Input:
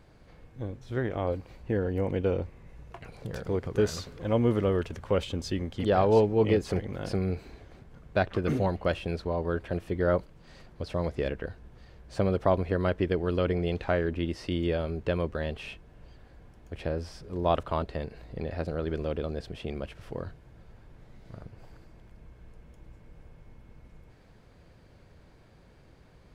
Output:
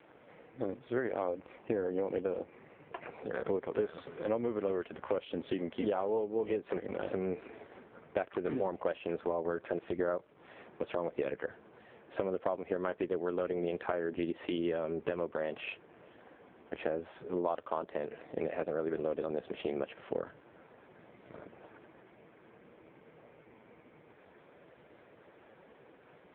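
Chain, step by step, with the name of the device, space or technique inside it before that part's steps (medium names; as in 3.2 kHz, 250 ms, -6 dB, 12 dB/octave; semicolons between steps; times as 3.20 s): voicemail (band-pass 310–3000 Hz; compression 10:1, threshold -36 dBFS, peak gain reduction 18 dB; trim +7.5 dB; AMR-NB 5.15 kbps 8 kHz)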